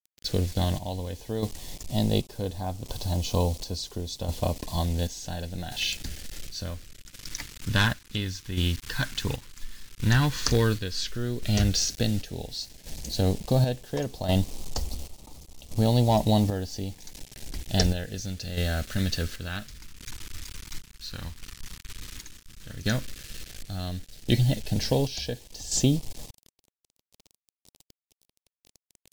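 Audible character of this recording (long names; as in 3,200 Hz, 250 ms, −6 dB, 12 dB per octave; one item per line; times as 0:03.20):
a quantiser's noise floor 8 bits, dither none
phaser sweep stages 2, 0.083 Hz, lowest notch 670–1,500 Hz
chopped level 0.7 Hz, depth 60%, duty 55%
MP3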